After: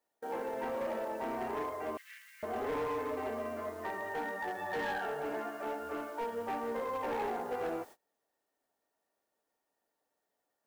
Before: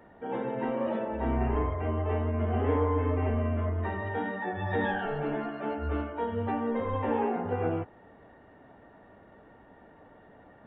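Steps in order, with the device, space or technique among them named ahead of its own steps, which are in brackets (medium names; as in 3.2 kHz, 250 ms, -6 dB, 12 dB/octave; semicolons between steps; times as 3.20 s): aircraft radio (band-pass 400–2700 Hz; hard clipper -29.5 dBFS, distortion -13 dB; white noise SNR 24 dB; gate -48 dBFS, range -27 dB); 1.97–2.43 s: steep high-pass 1.7 kHz 48 dB/octave; trim -2 dB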